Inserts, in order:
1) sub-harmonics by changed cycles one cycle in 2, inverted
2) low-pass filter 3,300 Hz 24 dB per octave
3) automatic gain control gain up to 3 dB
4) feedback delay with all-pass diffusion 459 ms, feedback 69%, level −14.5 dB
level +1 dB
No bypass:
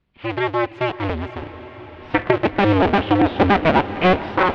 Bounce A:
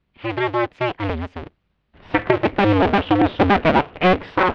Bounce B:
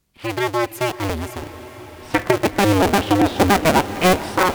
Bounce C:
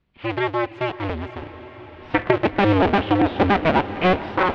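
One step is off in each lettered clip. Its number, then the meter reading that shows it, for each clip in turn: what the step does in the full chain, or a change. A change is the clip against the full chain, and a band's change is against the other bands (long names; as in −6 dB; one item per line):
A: 4, echo-to-direct ratio −11.5 dB to none audible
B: 2, 4 kHz band +4.0 dB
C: 3, change in integrated loudness −2.0 LU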